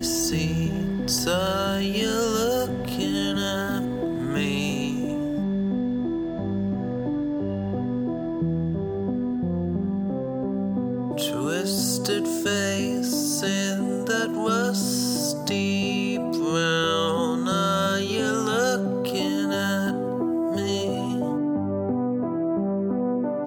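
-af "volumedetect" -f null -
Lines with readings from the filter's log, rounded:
mean_volume: -24.8 dB
max_volume: -10.1 dB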